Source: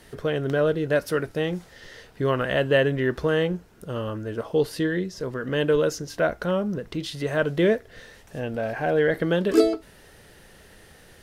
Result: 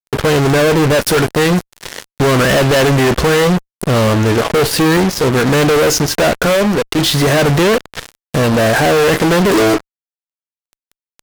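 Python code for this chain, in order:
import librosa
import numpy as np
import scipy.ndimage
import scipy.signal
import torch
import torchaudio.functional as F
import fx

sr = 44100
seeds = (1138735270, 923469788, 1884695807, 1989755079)

y = fx.highpass(x, sr, hz=450.0, slope=6, at=(6.46, 6.99))
y = fx.fuzz(y, sr, gain_db=42.0, gate_db=-39.0)
y = y * 10.0 ** (3.5 / 20.0)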